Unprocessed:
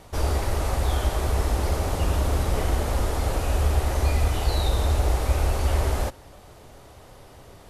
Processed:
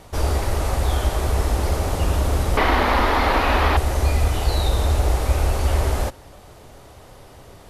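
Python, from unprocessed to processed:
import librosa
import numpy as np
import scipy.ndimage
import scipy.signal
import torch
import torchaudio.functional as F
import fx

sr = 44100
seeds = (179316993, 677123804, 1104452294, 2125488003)

y = fx.graphic_eq(x, sr, hz=(125, 250, 1000, 2000, 4000, 8000), db=(-11, 9, 11, 11, 8, -11), at=(2.57, 3.77))
y = F.gain(torch.from_numpy(y), 3.0).numpy()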